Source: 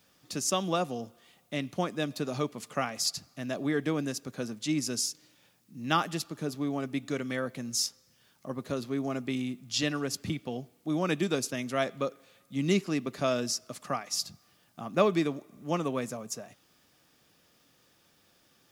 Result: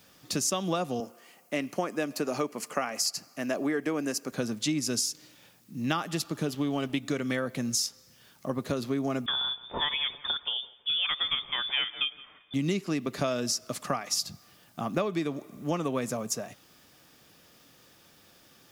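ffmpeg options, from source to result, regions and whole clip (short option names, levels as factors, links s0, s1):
-filter_complex "[0:a]asettb=1/sr,asplit=3[s0][s1][s2];[s0]atrim=end=1.004[s3];[s1]atrim=start=1:end=4.32,asetpts=PTS-STARTPTS,afade=t=in:d=0.004:c=qsin,afade=t=out:st=3.316:d=0.004:c=qsin,highpass=260,equalizer=f=3600:w=5.3:g=-14.5[s4];[s2]atrim=start=4.316[s5];[s3][s4]acrossfade=d=0.004:c1=hsin:c2=qsin[s6];[s6][s5]acrossfade=d=0.004:c1=qsin:c2=hsin,asettb=1/sr,asplit=3[s7][s8][s9];[s7]atrim=end=6.434[s10];[s8]atrim=start=6.43:end=7,asetpts=PTS-STARTPTS,afade=t=in:d=0.004:c=qsin,afade=t=out:st=0.566:d=0.004:c=qsin,equalizer=f=3000:w=5.1:g=13.5,aeval=exprs='sgn(val(0))*max(abs(val(0))-0.00178,0)':c=same[s11];[s9]atrim=start=6.996[s12];[s10][s11]acrossfade=d=0.004:c1=hsin:c2=qsin[s13];[s13][s12]acrossfade=d=0.004:c1=qsin:c2=hsin,asettb=1/sr,asplit=3[s14][s15][s16];[s14]atrim=end=9.264[s17];[s15]atrim=start=9.26:end=12.54,asetpts=PTS-STARTPTS,afade=t=in:d=0.004:c=qsin,afade=t=out:st=3.276:d=0.004:c=qsin,lowshelf=f=380:g=-6,lowpass=f=3100:t=q:w=0.5098,lowpass=f=3100:t=q:w=0.6013,lowpass=f=3100:t=q:w=0.9,lowpass=f=3100:t=q:w=2.563,afreqshift=-3700,asplit=2[s18][s19];[s19]adelay=165,lowpass=f=810:p=1,volume=0.237,asplit=2[s20][s21];[s21]adelay=165,lowpass=f=810:p=1,volume=0.41,asplit=2[s22][s23];[s23]adelay=165,lowpass=f=810:p=1,volume=0.41,asplit=2[s24][s25];[s25]adelay=165,lowpass=f=810:p=1,volume=0.41[s26];[s18][s20][s22][s24][s26]amix=inputs=5:normalize=0,atrim=end_sample=144648[s27];[s16]atrim=start=12.536[s28];[s17][s27]acrossfade=d=0.004:c1=hsin:c2=qsin[s29];[s29][s28]acrossfade=d=0.004:c1=qsin:c2=hsin,equalizer=f=14000:w=7.1:g=5.5,acompressor=threshold=0.0251:ratio=10,volume=2.24"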